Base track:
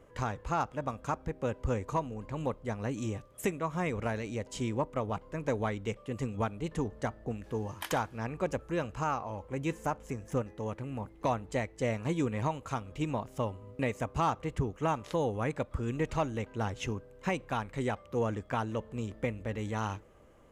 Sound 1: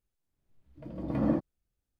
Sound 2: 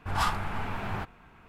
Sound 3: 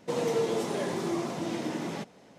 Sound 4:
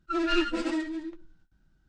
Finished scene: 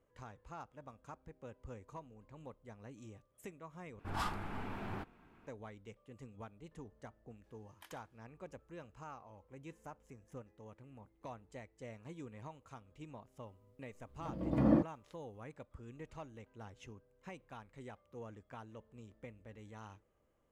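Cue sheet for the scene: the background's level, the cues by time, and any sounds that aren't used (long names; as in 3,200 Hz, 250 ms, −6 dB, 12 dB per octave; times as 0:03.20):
base track −18 dB
0:03.99: overwrite with 2 −11.5 dB + parametric band 300 Hz +9 dB 1.3 octaves
0:13.43: mix in 1 −1 dB
not used: 3, 4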